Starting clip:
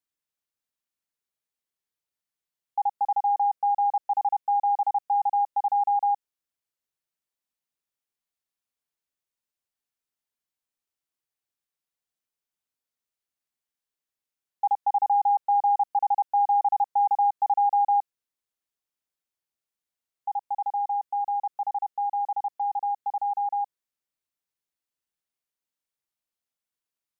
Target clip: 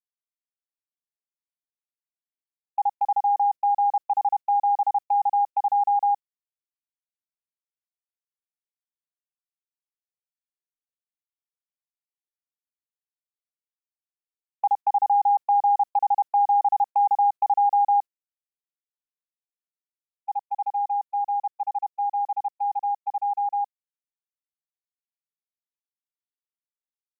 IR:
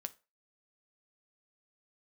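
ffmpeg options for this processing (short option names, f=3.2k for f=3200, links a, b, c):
-af "agate=range=-32dB:threshold=-29dB:ratio=16:detection=peak,volume=2dB"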